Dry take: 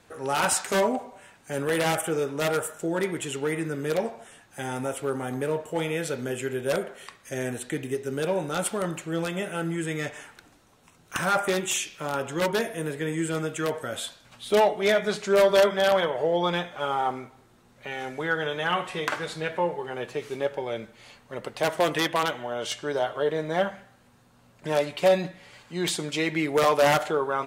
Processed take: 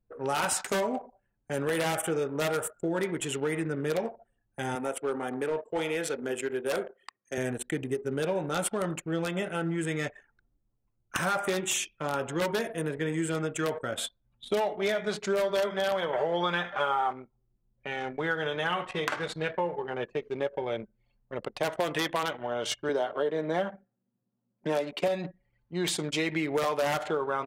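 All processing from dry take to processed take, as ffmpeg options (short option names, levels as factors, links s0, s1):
-filter_complex "[0:a]asettb=1/sr,asplit=3[s0][s1][s2];[s0]atrim=end=4.754[s3];[s1]atrim=start=4.75:end=7.38,asetpts=PTS-STARTPTS,afade=t=in:d=0.004:c=qsin,afade=t=out:st=2.626:d=0.004:c=qsin,highpass=250,bandreject=f=580:w=14,asoftclip=type=hard:threshold=0.075[s4];[s2]atrim=start=7.376[s5];[s3][s4]acrossfade=d=0.004:c1=hsin:c2=qsin[s6];[s6][s5]acrossfade=d=0.004:c1=qsin:c2=hsin,asettb=1/sr,asplit=3[s7][s8][s9];[s7]atrim=end=16.134[s10];[s8]atrim=start=16.13:end=17.13,asetpts=PTS-STARTPTS,afade=t=in:d=0.004:c=qsin,afade=t=out:st=0.996:d=0.004:c=qsin,equalizer=f=1400:t=o:w=2.3:g=10,aecho=1:1:5.1:0.36,atrim=end_sample=44100[s11];[s9]atrim=start=17.126[s12];[s10][s11]acrossfade=d=0.004:c1=hsin:c2=qsin[s13];[s13][s12]acrossfade=d=0.004:c1=qsin:c2=hsin,asettb=1/sr,asplit=3[s14][s15][s16];[s14]atrim=end=22.894[s17];[s15]atrim=start=22.89:end=25.08,asetpts=PTS-STARTPTS,afade=t=in:d=0.004:c=qsin,afade=t=out:st=2.186:d=0.004:c=qsin,highpass=f=180:w=0.5412,highpass=f=180:w=1.3066,lowshelf=f=450:g=6[s18];[s16]atrim=start=25.076[s19];[s17][s18]acrossfade=d=0.004:c1=hsin:c2=qsin[s20];[s20][s19]acrossfade=d=0.004:c1=qsin:c2=hsin,anlmdn=2.51,acompressor=threshold=0.0562:ratio=6"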